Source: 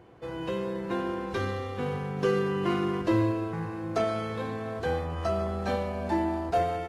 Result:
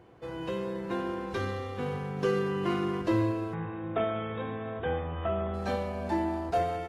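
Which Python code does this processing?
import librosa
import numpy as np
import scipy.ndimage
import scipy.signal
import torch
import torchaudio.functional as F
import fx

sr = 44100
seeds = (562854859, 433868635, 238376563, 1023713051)

y = fx.brickwall_lowpass(x, sr, high_hz=3800.0, at=(3.53, 5.53), fade=0.02)
y = y * 10.0 ** (-2.0 / 20.0)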